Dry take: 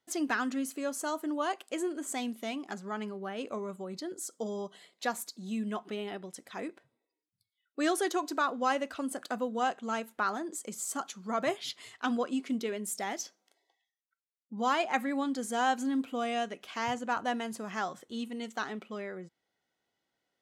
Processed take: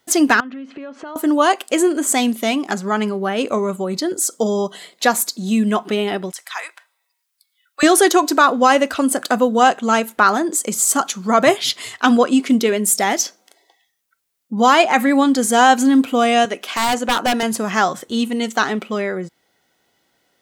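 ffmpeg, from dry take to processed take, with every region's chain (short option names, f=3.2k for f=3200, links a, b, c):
-filter_complex "[0:a]asettb=1/sr,asplit=3[a][b][c];[a]atrim=end=0.404[d];[b]atrim=start=0.4:end=1.16,asetpts=PTS-STARTPTS,afade=t=in:d=0.004:c=qsin,afade=t=out:st=0.756:d=0.004:c=qsin,lowpass=f=3.1k:w=0.5412,lowpass=f=3.1k:w=1.3066,acompressor=threshold=-47dB:ratio=8:attack=3.2:release=140:knee=1:detection=peak[e];[c]atrim=start=1.156[f];[d][e]acrossfade=d=0.004:c1=hsin:c2=qsin[g];[g][f]acrossfade=d=0.004:c1=qsin:c2=hsin,asettb=1/sr,asplit=3[h][i][j];[h]atrim=end=6.324[k];[i]atrim=start=6.32:end=7.83,asetpts=PTS-STARTPTS,afade=t=in:d=0.004:c=qsin,afade=t=out:st=1.506:d=0.004:c=qsin,highpass=f=930:w=0.5412,highpass=f=930:w=1.3066,deesser=0.95[l];[j]atrim=start=7.826[m];[k][l]acrossfade=d=0.004:c1=hsin:c2=qsin[n];[n][m]acrossfade=d=0.004:c1=qsin:c2=hsin,asettb=1/sr,asplit=3[o][p][q];[o]atrim=end=16.454[r];[p]atrim=start=16.45:end=17.43,asetpts=PTS-STARTPTS,afade=t=in:d=0.004:c=qsin,afade=t=out:st=0.976:d=0.004:c=qsin,highpass=250,aeval=exprs='0.0398*(abs(mod(val(0)/0.0398+3,4)-2)-1)':c=same[s];[q]atrim=start=17.426[t];[r][s]acrossfade=d=0.004:c1=hsin:c2=qsin[u];[u][t]acrossfade=d=0.004:c1=qsin:c2=hsin,highshelf=f=8.2k:g=5.5,alimiter=level_in=18.5dB:limit=-1dB:release=50:level=0:latency=1,volume=-1dB"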